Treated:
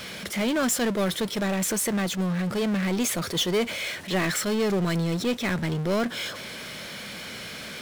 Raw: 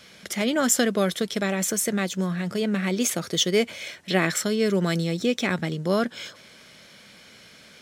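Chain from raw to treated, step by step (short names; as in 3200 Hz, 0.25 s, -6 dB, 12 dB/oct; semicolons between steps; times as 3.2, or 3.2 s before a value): bell 6400 Hz -4.5 dB 0.77 oct; power-law curve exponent 0.5; attack slew limiter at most 200 dB/s; gain -8.5 dB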